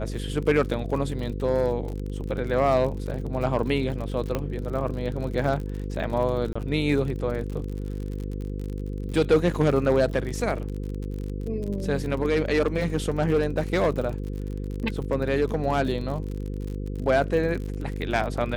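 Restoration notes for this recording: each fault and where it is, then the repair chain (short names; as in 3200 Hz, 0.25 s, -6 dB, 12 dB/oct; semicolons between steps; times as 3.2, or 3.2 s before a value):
buzz 50 Hz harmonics 10 -31 dBFS
crackle 48/s -32 dBFS
4.35 pop -13 dBFS
6.53–6.55 gap 25 ms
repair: de-click; de-hum 50 Hz, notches 10; interpolate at 6.53, 25 ms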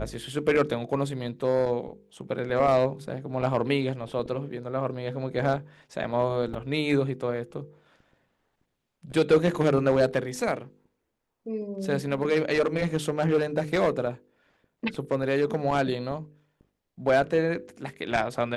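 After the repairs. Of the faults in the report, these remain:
none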